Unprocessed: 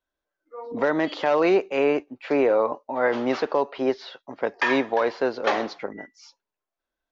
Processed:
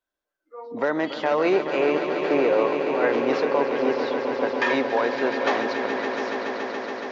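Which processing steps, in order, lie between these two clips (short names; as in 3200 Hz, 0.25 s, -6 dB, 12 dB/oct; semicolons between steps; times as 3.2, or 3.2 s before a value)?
low shelf 110 Hz -7.5 dB; on a send: swelling echo 0.141 s, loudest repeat 5, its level -10 dB; on the sum: gain -1 dB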